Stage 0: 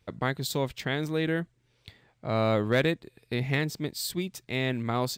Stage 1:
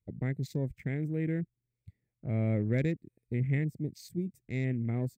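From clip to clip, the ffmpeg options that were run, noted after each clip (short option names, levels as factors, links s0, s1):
-af "afwtdn=0.0141,firequalizer=gain_entry='entry(120,0);entry(1100,-28);entry(2100,-8);entry(3000,-23);entry(8100,-5)':delay=0.05:min_phase=1,volume=1.19"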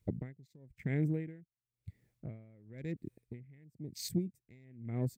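-af "acompressor=threshold=0.0158:ratio=10,aeval=exprs='val(0)*pow(10,-29*(0.5-0.5*cos(2*PI*0.98*n/s))/20)':c=same,volume=3.16"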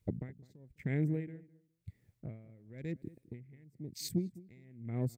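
-filter_complex "[0:a]asplit=2[s0][s1];[s1]adelay=207,lowpass=f=1200:p=1,volume=0.112,asplit=2[s2][s3];[s3]adelay=207,lowpass=f=1200:p=1,volume=0.21[s4];[s0][s2][s4]amix=inputs=3:normalize=0"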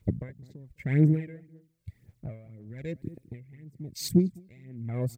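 -af "aphaser=in_gain=1:out_gain=1:delay=1.9:decay=0.56:speed=1.9:type=sinusoidal,volume=1.78"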